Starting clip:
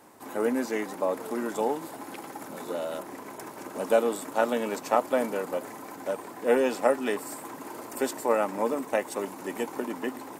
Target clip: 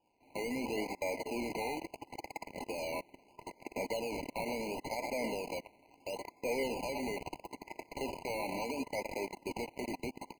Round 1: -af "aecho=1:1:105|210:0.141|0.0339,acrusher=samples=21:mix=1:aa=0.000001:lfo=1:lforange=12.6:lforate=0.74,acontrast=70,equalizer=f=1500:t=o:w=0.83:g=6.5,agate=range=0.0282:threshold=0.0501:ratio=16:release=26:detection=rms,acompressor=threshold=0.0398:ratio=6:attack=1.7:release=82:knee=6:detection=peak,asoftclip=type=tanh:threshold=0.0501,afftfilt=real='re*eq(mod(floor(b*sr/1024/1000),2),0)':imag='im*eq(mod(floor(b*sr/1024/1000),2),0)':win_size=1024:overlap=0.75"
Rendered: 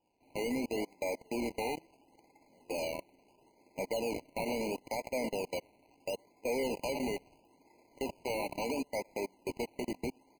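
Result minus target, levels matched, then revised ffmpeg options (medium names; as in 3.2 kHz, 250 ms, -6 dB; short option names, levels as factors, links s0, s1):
2 kHz band -3.0 dB
-af "aecho=1:1:105|210:0.141|0.0339,acrusher=samples=21:mix=1:aa=0.000001:lfo=1:lforange=12.6:lforate=0.74,acontrast=70,equalizer=f=1500:t=o:w=0.83:g=17,agate=range=0.0282:threshold=0.0501:ratio=16:release=26:detection=rms,acompressor=threshold=0.0398:ratio=6:attack=1.7:release=82:knee=6:detection=peak,asoftclip=type=tanh:threshold=0.0501,afftfilt=real='re*eq(mod(floor(b*sr/1024/1000),2),0)':imag='im*eq(mod(floor(b*sr/1024/1000),2),0)':win_size=1024:overlap=0.75"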